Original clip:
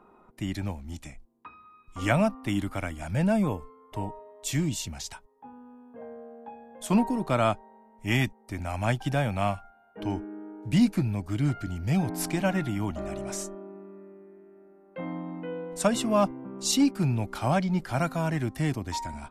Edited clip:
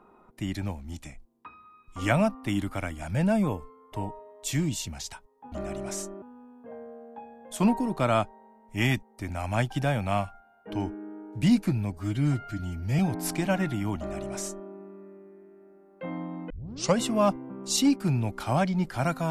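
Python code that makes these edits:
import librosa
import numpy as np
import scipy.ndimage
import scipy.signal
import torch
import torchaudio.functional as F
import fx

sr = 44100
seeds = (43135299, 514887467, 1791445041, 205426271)

y = fx.edit(x, sr, fx.stretch_span(start_s=11.24, length_s=0.7, factor=1.5),
    fx.duplicate(start_s=12.93, length_s=0.7, to_s=5.52),
    fx.tape_start(start_s=15.45, length_s=0.47), tone=tone)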